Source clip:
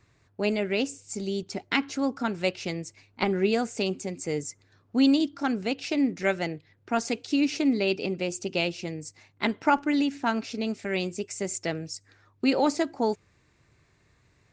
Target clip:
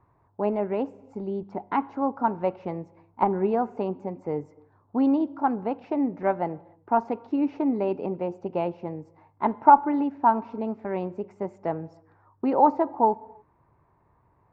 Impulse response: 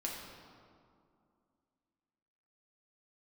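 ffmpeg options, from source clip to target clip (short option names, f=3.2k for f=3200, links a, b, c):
-filter_complex "[0:a]lowpass=f=940:t=q:w=4.9,asplit=2[a][b];[1:a]atrim=start_sample=2205,afade=t=out:st=0.36:d=0.01,atrim=end_sample=16317[c];[b][c]afir=irnorm=-1:irlink=0,volume=-19dB[d];[a][d]amix=inputs=2:normalize=0,volume=-2dB"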